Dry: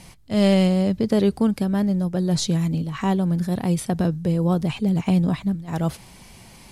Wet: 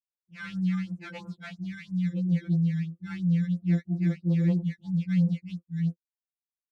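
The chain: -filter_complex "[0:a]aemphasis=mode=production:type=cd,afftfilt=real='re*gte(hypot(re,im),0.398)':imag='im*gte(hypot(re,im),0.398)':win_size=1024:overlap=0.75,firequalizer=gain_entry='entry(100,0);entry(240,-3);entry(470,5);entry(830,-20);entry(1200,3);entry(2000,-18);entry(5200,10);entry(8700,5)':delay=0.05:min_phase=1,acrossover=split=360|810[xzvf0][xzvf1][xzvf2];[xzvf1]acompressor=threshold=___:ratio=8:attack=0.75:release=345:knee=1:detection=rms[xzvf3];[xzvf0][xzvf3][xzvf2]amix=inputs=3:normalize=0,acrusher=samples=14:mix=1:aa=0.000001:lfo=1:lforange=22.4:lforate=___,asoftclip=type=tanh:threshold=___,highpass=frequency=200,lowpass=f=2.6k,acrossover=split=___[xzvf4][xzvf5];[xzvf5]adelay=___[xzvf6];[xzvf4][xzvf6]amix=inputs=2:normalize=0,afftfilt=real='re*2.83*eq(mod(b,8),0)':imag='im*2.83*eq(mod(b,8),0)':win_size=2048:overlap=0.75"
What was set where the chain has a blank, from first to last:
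0.00794, 3, 0.158, 380, 30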